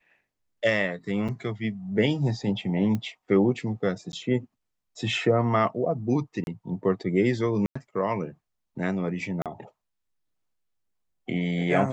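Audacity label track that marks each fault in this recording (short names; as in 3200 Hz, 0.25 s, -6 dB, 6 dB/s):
1.280000	1.290000	gap 6.1 ms
2.950000	2.950000	pop -18 dBFS
4.120000	4.130000	gap
6.440000	6.470000	gap 31 ms
7.660000	7.750000	gap 95 ms
9.420000	9.460000	gap 37 ms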